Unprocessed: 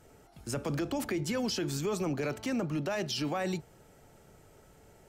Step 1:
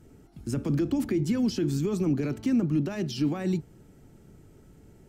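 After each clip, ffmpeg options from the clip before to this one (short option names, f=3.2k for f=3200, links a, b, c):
-af "lowshelf=f=420:t=q:w=1.5:g=10,volume=-3.5dB"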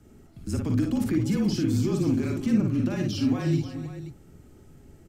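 -filter_complex "[0:a]afreqshift=-30,asplit=2[a][b];[b]aecho=0:1:44|56|306|351|429|532:0.398|0.596|0.237|0.133|0.168|0.237[c];[a][c]amix=inputs=2:normalize=0"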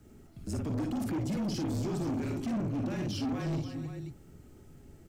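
-af "acrusher=bits=11:mix=0:aa=0.000001,asoftclip=type=tanh:threshold=-26.5dB,volume=-2.5dB"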